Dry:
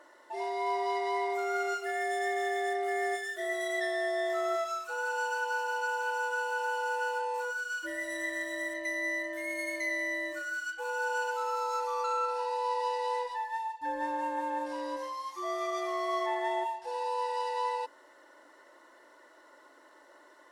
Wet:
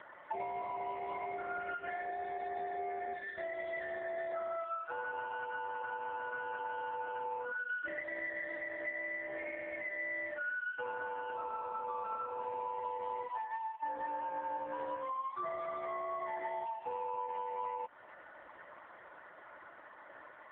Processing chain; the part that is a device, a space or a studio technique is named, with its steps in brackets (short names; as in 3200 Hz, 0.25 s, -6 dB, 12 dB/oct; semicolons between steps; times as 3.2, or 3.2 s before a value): voicemail (BPF 440–2700 Hz; compressor 12:1, threshold -43 dBFS, peak gain reduction 15 dB; gain +8.5 dB; AMR-NB 4.75 kbps 8000 Hz)